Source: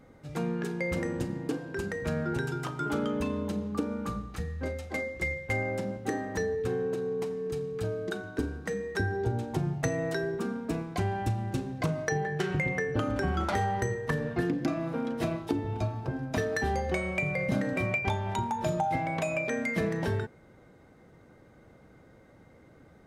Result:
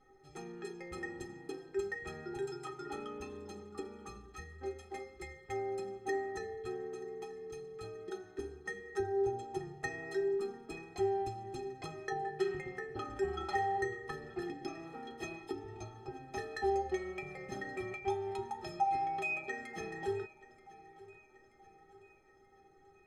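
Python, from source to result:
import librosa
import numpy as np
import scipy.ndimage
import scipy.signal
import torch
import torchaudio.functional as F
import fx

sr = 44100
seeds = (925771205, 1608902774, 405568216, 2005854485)

y = scipy.signal.sosfilt(scipy.signal.butter(2, 9400.0, 'lowpass', fs=sr, output='sos'), x)
y = fx.stiff_resonator(y, sr, f0_hz=380.0, decay_s=0.24, stiffness=0.03)
y = fx.echo_feedback(y, sr, ms=931, feedback_pct=51, wet_db=-20.0)
y = F.gain(torch.from_numpy(y), 8.0).numpy()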